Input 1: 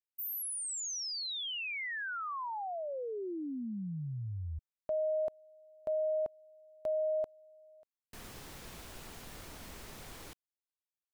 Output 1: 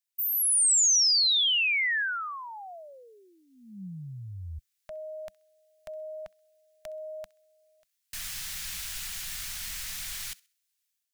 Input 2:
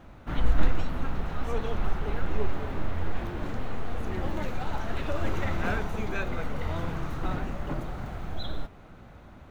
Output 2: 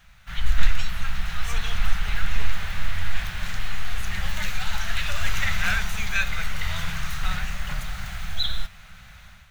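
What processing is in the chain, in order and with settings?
bell 200 Hz -13.5 dB 2.7 oct; thin delay 65 ms, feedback 31%, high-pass 1500 Hz, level -22 dB; AGC gain up to 8 dB; EQ curve 110 Hz 0 dB, 190 Hz +5 dB, 290 Hz -22 dB, 710 Hz -8 dB, 1000 Hz -7 dB, 1700 Hz +4 dB, 6200 Hz +9 dB

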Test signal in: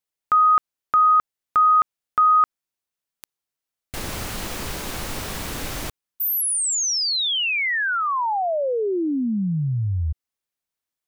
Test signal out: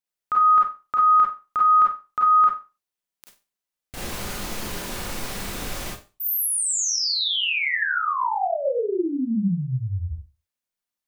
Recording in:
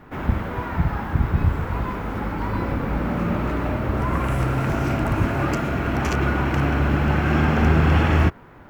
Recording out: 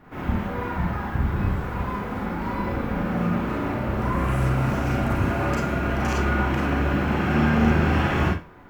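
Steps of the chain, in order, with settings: Schroeder reverb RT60 0.3 s, combs from 31 ms, DRR -3 dB; gain -6 dB

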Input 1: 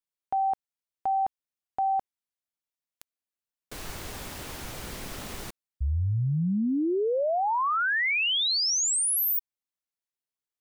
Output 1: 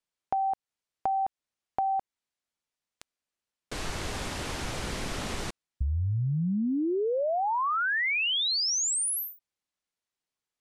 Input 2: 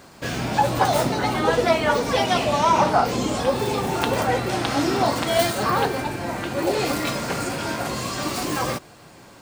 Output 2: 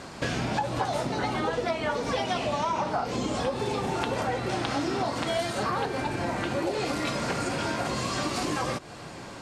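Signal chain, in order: Bessel low-pass 7700 Hz, order 8; compressor 6:1, threshold -32 dBFS; gain +5.5 dB

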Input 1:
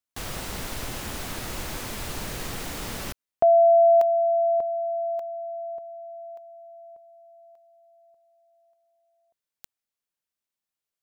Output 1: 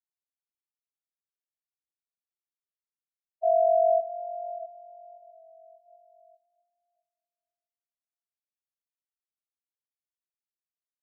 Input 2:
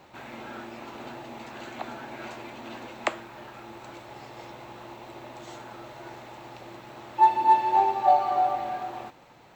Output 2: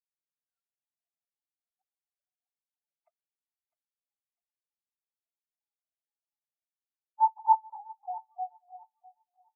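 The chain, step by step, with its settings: sine-wave speech; harmonic-percussive split harmonic -6 dB; in parallel at -1 dB: compressor 5:1, threshold -39 dBFS; on the sum: envelope flanger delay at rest 7 ms, full sweep at -25 dBFS; on a send: thinning echo 0.653 s, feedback 73%, high-pass 930 Hz, level -4.5 dB; on the sum: spectral expander 2.5:1

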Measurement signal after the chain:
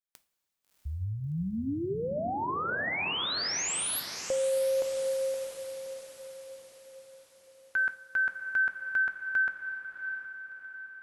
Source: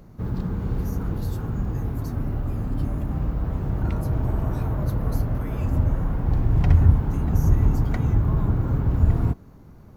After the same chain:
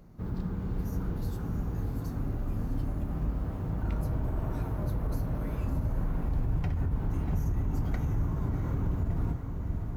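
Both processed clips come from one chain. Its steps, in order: diffused feedback echo 0.671 s, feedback 50%, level -8 dB; limiter -15 dBFS; two-slope reverb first 0.32 s, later 4.2 s, from -18 dB, DRR 9.5 dB; gain -7 dB

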